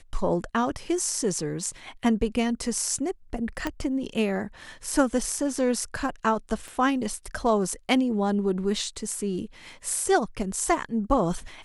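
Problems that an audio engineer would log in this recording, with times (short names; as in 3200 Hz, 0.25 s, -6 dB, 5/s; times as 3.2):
3.67 pop -14 dBFS
6.68 pop -28 dBFS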